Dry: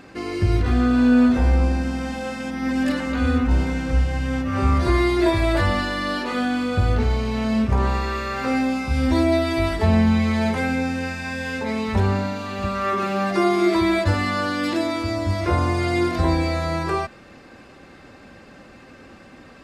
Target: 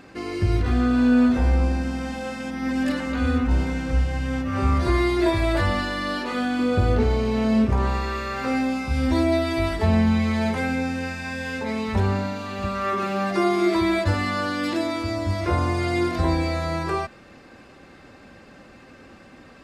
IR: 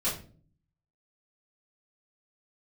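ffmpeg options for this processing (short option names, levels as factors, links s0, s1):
-filter_complex "[0:a]asettb=1/sr,asplit=3[s0][s1][s2];[s0]atrim=end=6.594[s3];[s1]atrim=start=6.59:end=7.71,asetpts=PTS-STARTPTS,afade=t=in:d=0.004:c=qsin,afade=t=out:st=1.116:d=0.004:c=qsin,equalizer=f=380:t=o:w=1.6:g=7[s4];[s2]atrim=start=7.706[s5];[s3][s4]acrossfade=d=0.004:c1=hsin:c2=qsin[s6];[s6][s5]acrossfade=d=0.004:c1=qsin:c2=hsin,volume=0.794"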